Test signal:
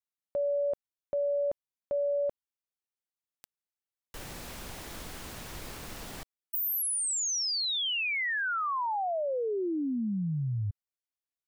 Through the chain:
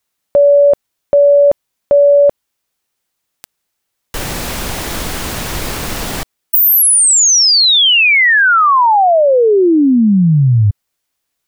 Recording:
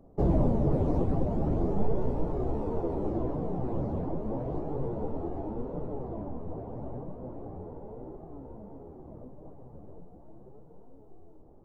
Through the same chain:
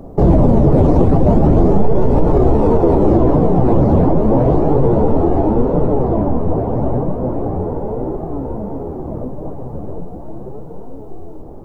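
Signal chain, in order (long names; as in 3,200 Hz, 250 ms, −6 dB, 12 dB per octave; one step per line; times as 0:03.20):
boost into a limiter +23.5 dB
level −2 dB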